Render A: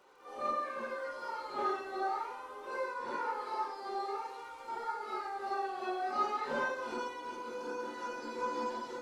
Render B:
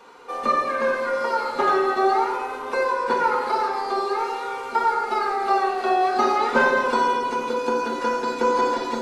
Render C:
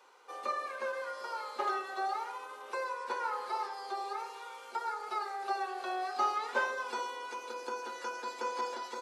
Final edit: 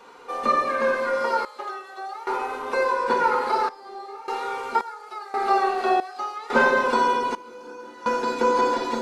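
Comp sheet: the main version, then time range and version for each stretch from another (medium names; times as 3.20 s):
B
1.45–2.27 s: from C
3.69–4.28 s: from A
4.81–5.34 s: from C
6.00–6.50 s: from C
7.35–8.06 s: from A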